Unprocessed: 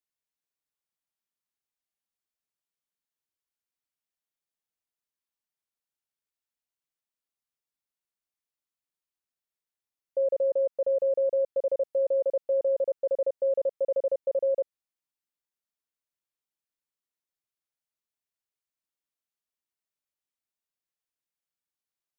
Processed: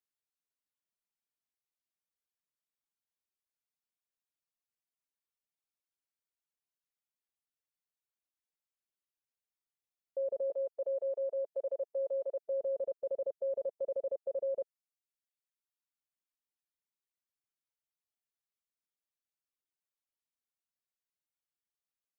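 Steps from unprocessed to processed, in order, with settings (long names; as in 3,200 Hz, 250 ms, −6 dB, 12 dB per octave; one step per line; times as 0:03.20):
reverb reduction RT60 1.5 s
0:10.50–0:12.45: Bessel high-pass filter 510 Hz, order 2
brickwall limiter −26 dBFS, peak gain reduction 5 dB
level −3.5 dB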